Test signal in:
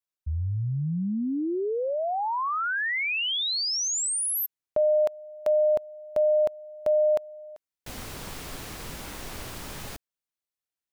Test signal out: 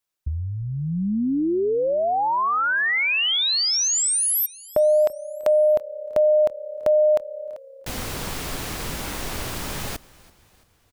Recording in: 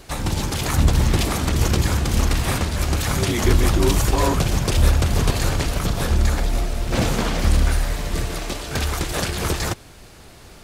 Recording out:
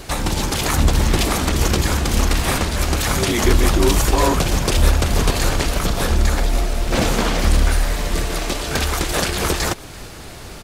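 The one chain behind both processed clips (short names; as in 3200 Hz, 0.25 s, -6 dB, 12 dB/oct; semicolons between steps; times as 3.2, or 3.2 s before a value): in parallel at 0 dB: compressor 6:1, threshold -32 dBFS; on the sum: dynamic EQ 110 Hz, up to -7 dB, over -33 dBFS, Q 1.1; frequency-shifting echo 0.335 s, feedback 52%, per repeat -34 Hz, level -22.5 dB; gain +2.5 dB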